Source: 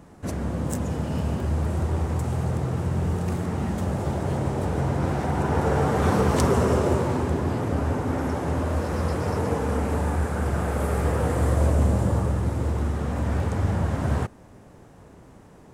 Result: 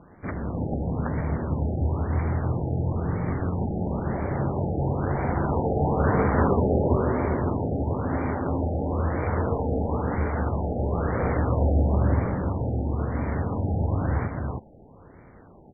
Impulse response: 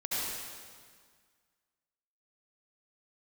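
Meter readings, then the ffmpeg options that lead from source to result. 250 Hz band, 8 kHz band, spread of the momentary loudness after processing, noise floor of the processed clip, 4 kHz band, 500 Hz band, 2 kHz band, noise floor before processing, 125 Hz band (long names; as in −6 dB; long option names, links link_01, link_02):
−0.5 dB, below −40 dB, 6 LU, −50 dBFS, below −40 dB, −0.5 dB, −2.0 dB, −49 dBFS, −1.0 dB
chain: -af "highshelf=frequency=2500:gain=10.5,tremolo=f=190:d=0.571,acrusher=samples=10:mix=1:aa=0.000001,aecho=1:1:329:0.668,afftfilt=real='re*lt(b*sr/1024,840*pow(2400/840,0.5+0.5*sin(2*PI*1*pts/sr)))':imag='im*lt(b*sr/1024,840*pow(2400/840,0.5+0.5*sin(2*PI*1*pts/sr)))':win_size=1024:overlap=0.75"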